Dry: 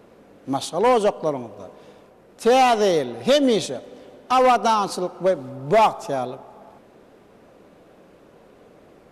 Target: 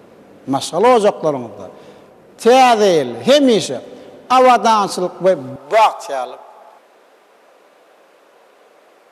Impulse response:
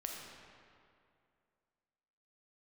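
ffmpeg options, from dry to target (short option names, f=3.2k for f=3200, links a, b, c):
-af "asetnsamples=n=441:p=0,asendcmd='5.56 highpass f 630',highpass=75,volume=6.5dB"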